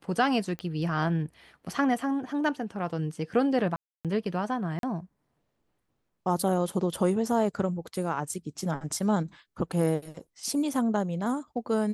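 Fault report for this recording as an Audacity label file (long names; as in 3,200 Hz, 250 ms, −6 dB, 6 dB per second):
0.590000	0.590000	click −22 dBFS
3.760000	4.050000	drop-out 287 ms
4.790000	4.830000	drop-out 42 ms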